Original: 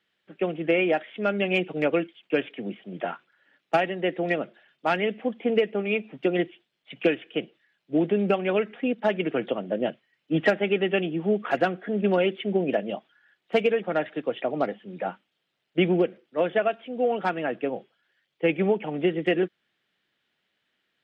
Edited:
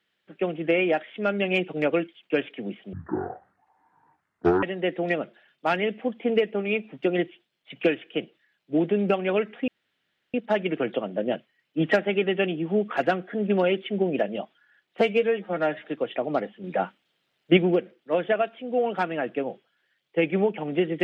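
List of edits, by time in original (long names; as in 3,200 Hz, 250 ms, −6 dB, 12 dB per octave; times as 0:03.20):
0:02.93–0:03.83: play speed 53%
0:08.88: splice in room tone 0.66 s
0:13.55–0:14.11: time-stretch 1.5×
0:14.90–0:15.83: clip gain +4.5 dB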